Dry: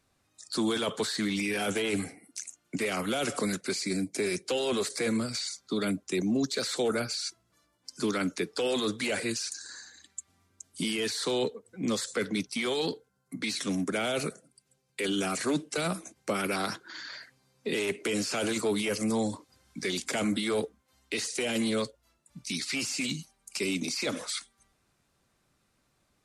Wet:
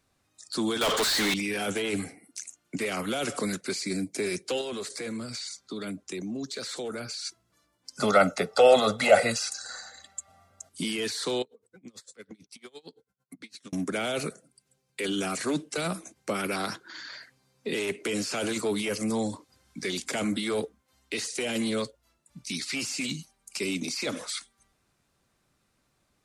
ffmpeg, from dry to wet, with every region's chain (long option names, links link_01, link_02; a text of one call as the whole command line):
ffmpeg -i in.wav -filter_complex "[0:a]asettb=1/sr,asplit=3[link_01][link_02][link_03];[link_01]atrim=end=0.814[link_04];[link_02]atrim=start=0.81:end=1.34,asetpts=PTS-STARTPTS,afade=type=in:duration=0.004:curve=qsin,afade=type=out:start_time=0.526:duration=0.004:curve=qsin,asplit=2[link_05][link_06];[link_06]highpass=frequency=720:poles=1,volume=34dB,asoftclip=type=tanh:threshold=-18.5dB[link_07];[link_05][link_07]amix=inputs=2:normalize=0,lowpass=frequency=6500:poles=1,volume=-6dB,equalizer=frequency=140:width=0.63:gain=-3.5[link_08];[link_03]atrim=start=1.336[link_09];[link_04][link_08]acrossfade=duration=0.004:curve1=hsin:curve2=qsin[link_10];[link_10][link_09]acrossfade=duration=0.004:curve1=qsin:curve2=hsin,asettb=1/sr,asplit=3[link_11][link_12][link_13];[link_11]atrim=end=4.614[link_14];[link_12]atrim=start=4.61:end=7.25,asetpts=PTS-STARTPTS,afade=type=in:duration=0.004:curve=qsin,afade=type=out:start_time=2.636:duration=0.004:curve=qsin,lowpass=12000,acompressor=threshold=-34dB:ratio=2.5:attack=3.2:release=140:knee=1:detection=peak[link_15];[link_13]atrim=start=7.246[link_16];[link_14][link_15]acrossfade=duration=0.004:curve1=hsin:curve2=qsin[link_17];[link_17][link_16]acrossfade=duration=0.004:curve1=qsin:curve2=hsin,asettb=1/sr,asplit=3[link_18][link_19][link_20];[link_18]atrim=end=7.974[link_21];[link_19]atrim=start=7.97:end=10.69,asetpts=PTS-STARTPTS,afade=type=in:duration=0.004:curve=qsin,afade=type=out:start_time=2.716:duration=0.004:curve=qsin,equalizer=frequency=730:width_type=o:width=2.1:gain=14.5,bandreject=frequency=450:width=12,aecho=1:1:1.5:0.84,atrim=end_sample=119952[link_22];[link_20]atrim=start=10.686[link_23];[link_21][link_22]acrossfade=duration=0.004:curve1=hsin:curve2=qsin[link_24];[link_24][link_23]acrossfade=duration=0.004:curve1=qsin:curve2=hsin,asettb=1/sr,asplit=3[link_25][link_26][link_27];[link_25]atrim=end=11.424[link_28];[link_26]atrim=start=11.42:end=13.73,asetpts=PTS-STARTPTS,afade=type=in:duration=0.004:curve=qsin,afade=type=out:start_time=2.306:duration=0.004:curve=qsin,acompressor=threshold=-39dB:ratio=6:attack=3.2:release=140:knee=1:detection=peak,aeval=exprs='val(0)*pow(10,-28*(0.5-0.5*cos(2*PI*8.9*n/s))/20)':channel_layout=same[link_29];[link_27]atrim=start=13.726[link_30];[link_28][link_29]acrossfade=duration=0.004:curve1=hsin:curve2=qsin[link_31];[link_31][link_30]acrossfade=duration=0.004:curve1=qsin:curve2=hsin" out.wav